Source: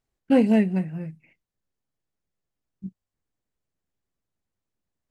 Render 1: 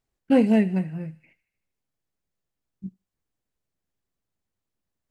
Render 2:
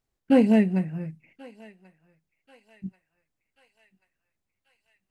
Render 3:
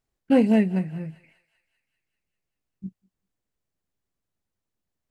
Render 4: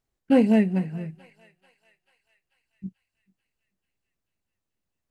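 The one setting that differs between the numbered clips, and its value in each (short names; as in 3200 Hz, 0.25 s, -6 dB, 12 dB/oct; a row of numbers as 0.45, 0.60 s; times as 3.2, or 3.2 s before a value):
thinning echo, time: 77, 1086, 196, 439 ms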